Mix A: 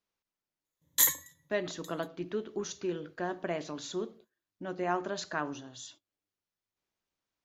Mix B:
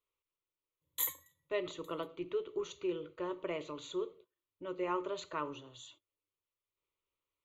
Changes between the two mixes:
background -7.5 dB; master: add fixed phaser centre 1100 Hz, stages 8

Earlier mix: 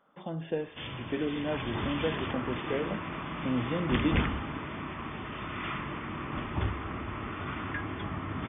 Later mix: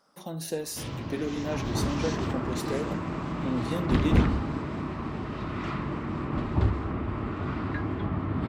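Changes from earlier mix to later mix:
background: add tilt shelf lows +7.5 dB, about 1300 Hz; master: remove brick-wall FIR low-pass 3600 Hz

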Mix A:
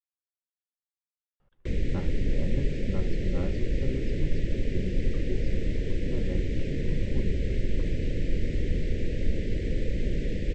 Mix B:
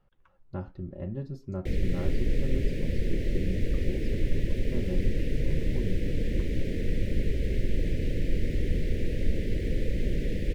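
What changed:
speech: entry -1.40 s; master: remove brick-wall FIR low-pass 8300 Hz

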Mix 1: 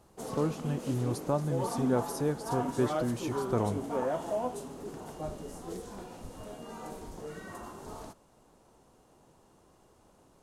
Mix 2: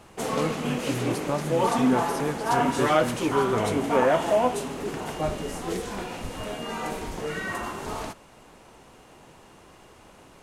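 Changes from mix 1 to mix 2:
background +9.5 dB; master: add bell 2300 Hz +11 dB 1.4 oct

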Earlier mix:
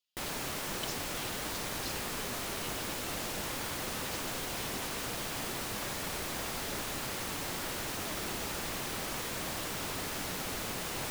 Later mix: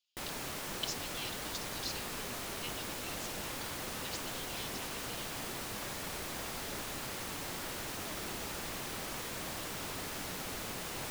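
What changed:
speech +4.0 dB; background -3.5 dB

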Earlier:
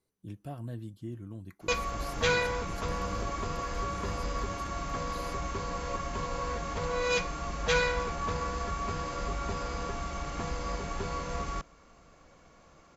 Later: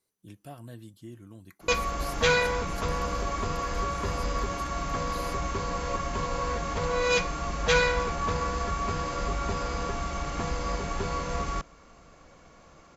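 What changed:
speech: add tilt +2 dB/oct; background +4.0 dB

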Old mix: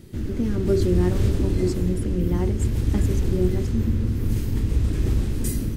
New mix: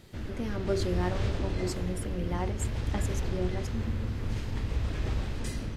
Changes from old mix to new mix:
background: add LPF 4500 Hz 12 dB/oct; master: add resonant low shelf 470 Hz -9 dB, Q 1.5

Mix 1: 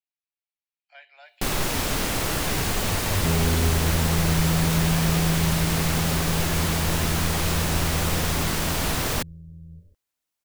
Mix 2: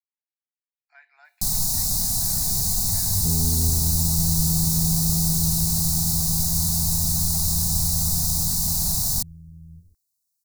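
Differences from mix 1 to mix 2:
first sound: add EQ curve 190 Hz 0 dB, 330 Hz -17 dB, 680 Hz 0 dB, 1400 Hz -23 dB, 2600 Hz -19 dB, 3900 Hz +9 dB; master: add fixed phaser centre 1300 Hz, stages 4

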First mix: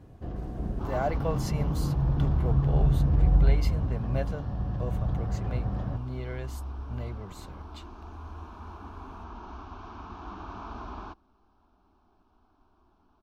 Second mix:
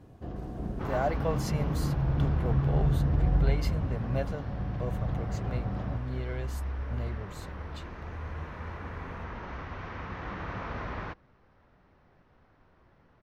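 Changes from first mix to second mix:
first sound: add low shelf 64 Hz -8 dB; second sound: remove fixed phaser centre 520 Hz, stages 6

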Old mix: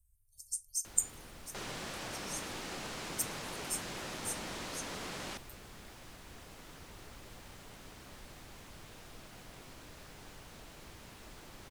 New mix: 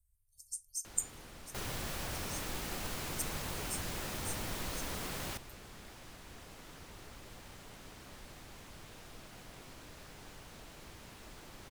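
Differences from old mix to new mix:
speech -4.0 dB; second sound: remove BPF 170–7700 Hz

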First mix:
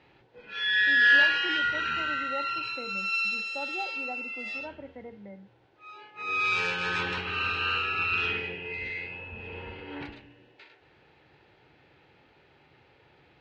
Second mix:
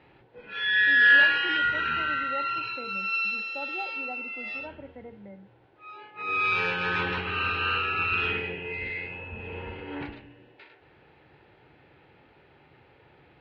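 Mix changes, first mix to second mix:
background +4.0 dB; master: add air absorption 230 m

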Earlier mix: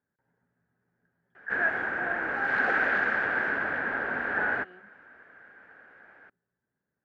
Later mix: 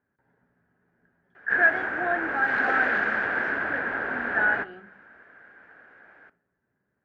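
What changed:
speech +5.5 dB; reverb: on, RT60 0.55 s

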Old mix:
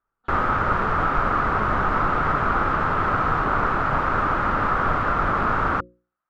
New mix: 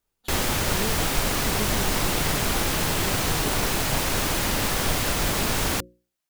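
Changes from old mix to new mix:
speech +4.5 dB; master: remove synth low-pass 1300 Hz, resonance Q 5.9

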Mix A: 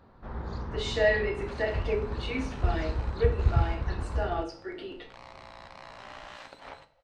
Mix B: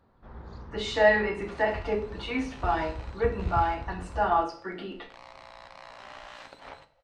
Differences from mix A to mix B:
speech: remove fixed phaser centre 410 Hz, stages 4; first sound -7.5 dB

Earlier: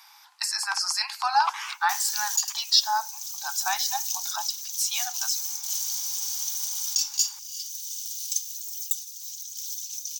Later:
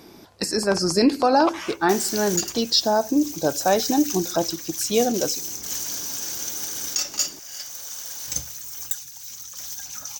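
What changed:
background: remove inverse Chebyshev high-pass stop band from 1600 Hz, stop band 40 dB; master: remove steep high-pass 800 Hz 96 dB/oct

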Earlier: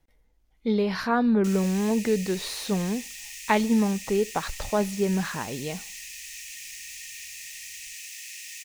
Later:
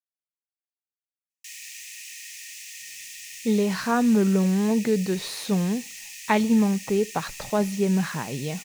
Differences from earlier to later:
speech: entry +2.80 s; master: add resonant low shelf 100 Hz -9.5 dB, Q 3

